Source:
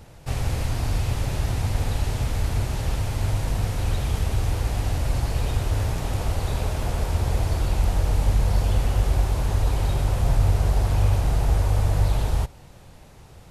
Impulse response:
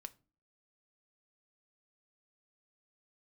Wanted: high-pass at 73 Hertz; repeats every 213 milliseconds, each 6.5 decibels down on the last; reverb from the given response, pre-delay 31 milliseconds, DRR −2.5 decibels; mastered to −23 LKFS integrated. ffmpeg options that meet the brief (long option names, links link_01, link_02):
-filter_complex "[0:a]highpass=73,aecho=1:1:213|426|639|852|1065|1278:0.473|0.222|0.105|0.0491|0.0231|0.0109,asplit=2[link_01][link_02];[1:a]atrim=start_sample=2205,adelay=31[link_03];[link_02][link_03]afir=irnorm=-1:irlink=0,volume=8dB[link_04];[link_01][link_04]amix=inputs=2:normalize=0,volume=-1.5dB"